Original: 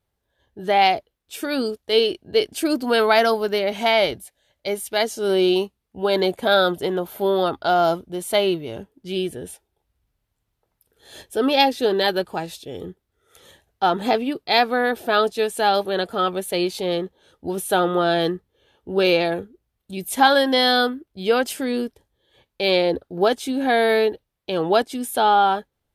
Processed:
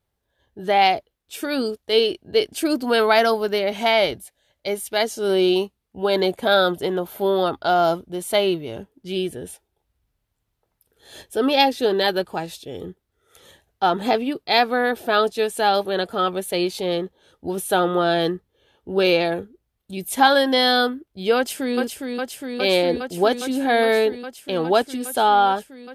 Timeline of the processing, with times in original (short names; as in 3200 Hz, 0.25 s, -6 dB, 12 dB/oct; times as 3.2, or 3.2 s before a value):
21.36–21.77 echo throw 0.41 s, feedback 85%, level -4.5 dB